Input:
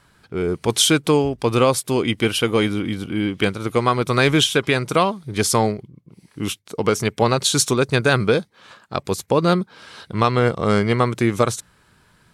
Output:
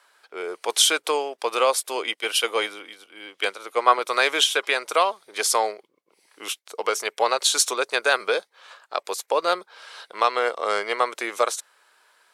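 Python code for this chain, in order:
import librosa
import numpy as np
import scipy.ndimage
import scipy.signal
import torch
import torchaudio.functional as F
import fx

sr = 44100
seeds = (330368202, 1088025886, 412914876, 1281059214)

y = scipy.signal.sosfilt(scipy.signal.butter(4, 510.0, 'highpass', fs=sr, output='sos'), x)
y = fx.band_widen(y, sr, depth_pct=70, at=(2.14, 3.99))
y = F.gain(torch.from_numpy(y), -1.0).numpy()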